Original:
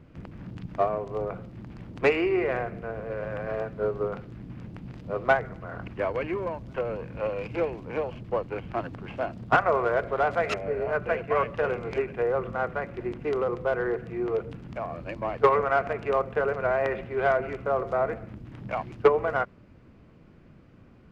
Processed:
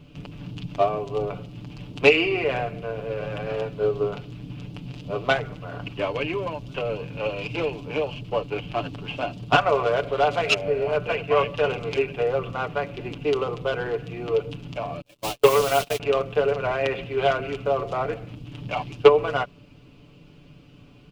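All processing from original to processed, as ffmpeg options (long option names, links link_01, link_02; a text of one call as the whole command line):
ffmpeg -i in.wav -filter_complex "[0:a]asettb=1/sr,asplit=3[link_01][link_02][link_03];[link_01]atrim=end=15.014[link_04];[link_02]atrim=start=15.01:end=16,asetpts=PTS-STARTPTS,afade=type=in:duration=0.004:curve=qsin,afade=type=out:start_time=0.986:duration=0.004:curve=qsin,aeval=exprs='val(0)+0.002*(sin(2*PI*60*n/s)+sin(2*PI*2*60*n/s)/2+sin(2*PI*3*60*n/s)/3+sin(2*PI*4*60*n/s)/4+sin(2*PI*5*60*n/s)/5)':channel_layout=same,acrusher=bits=7:dc=4:mix=0:aa=0.000001,agate=range=-34dB:threshold=-31dB:ratio=16:release=100:detection=peak[link_05];[link_03]atrim=start=15.996[link_06];[link_04][link_05]acrossfade=duration=0.004:curve1=hsin:curve2=qsin[link_07];[link_07][link_06]acrossfade=duration=0.004:curve1=qsin:curve2=hsin,highshelf=frequency=2300:width_type=q:width=3:gain=6.5,aecho=1:1:6.9:0.65,volume=2dB" out.wav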